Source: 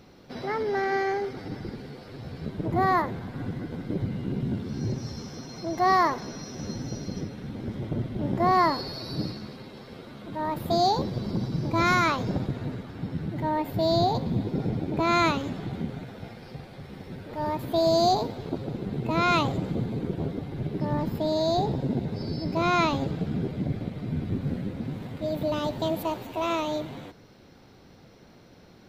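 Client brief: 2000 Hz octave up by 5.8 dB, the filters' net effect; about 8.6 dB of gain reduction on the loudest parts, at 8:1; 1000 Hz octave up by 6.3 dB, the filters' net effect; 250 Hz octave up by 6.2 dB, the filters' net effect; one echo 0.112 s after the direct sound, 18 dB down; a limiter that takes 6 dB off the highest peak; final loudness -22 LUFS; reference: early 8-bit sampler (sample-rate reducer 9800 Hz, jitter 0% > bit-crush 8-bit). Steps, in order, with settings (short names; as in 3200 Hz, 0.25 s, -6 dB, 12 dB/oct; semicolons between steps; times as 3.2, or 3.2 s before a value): bell 250 Hz +8 dB; bell 1000 Hz +6.5 dB; bell 2000 Hz +5 dB; compressor 8:1, threshold -20 dBFS; limiter -18.5 dBFS; echo 0.112 s -18 dB; sample-rate reducer 9800 Hz, jitter 0%; bit-crush 8-bit; gain +6.5 dB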